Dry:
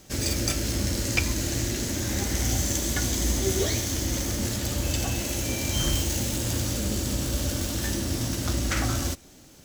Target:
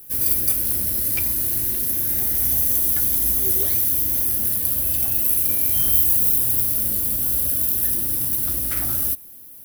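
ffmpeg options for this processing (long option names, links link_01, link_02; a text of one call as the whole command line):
ffmpeg -i in.wav -af "aexciter=amount=11.1:drive=9.5:freq=10000,volume=-7dB" out.wav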